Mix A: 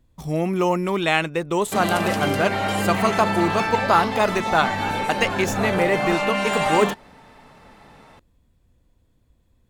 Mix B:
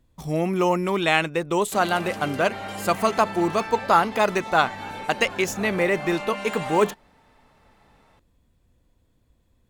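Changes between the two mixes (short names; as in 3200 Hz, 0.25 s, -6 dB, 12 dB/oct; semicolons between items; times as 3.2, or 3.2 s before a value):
background -10.0 dB; master: add low shelf 200 Hz -3 dB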